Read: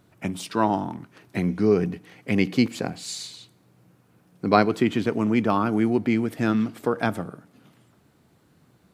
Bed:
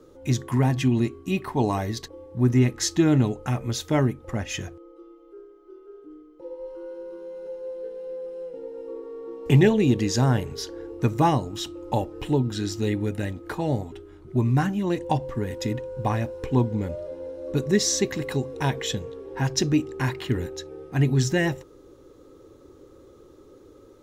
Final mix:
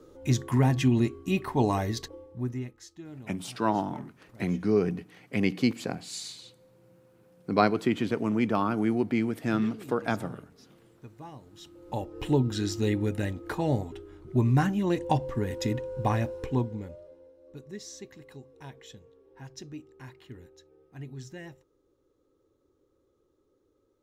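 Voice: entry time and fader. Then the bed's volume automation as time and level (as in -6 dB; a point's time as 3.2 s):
3.05 s, -4.5 dB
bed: 2.12 s -1.5 dB
2.89 s -25 dB
11.29 s -25 dB
12.25 s -1.5 dB
16.33 s -1.5 dB
17.35 s -20.5 dB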